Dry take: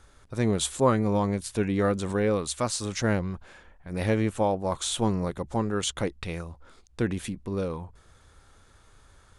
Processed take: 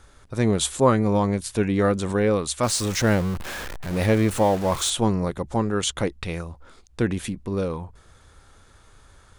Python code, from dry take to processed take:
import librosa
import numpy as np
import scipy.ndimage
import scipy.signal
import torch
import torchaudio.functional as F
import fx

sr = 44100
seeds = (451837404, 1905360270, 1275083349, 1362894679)

y = fx.zero_step(x, sr, step_db=-32.0, at=(2.63, 4.9))
y = y * librosa.db_to_amplitude(4.0)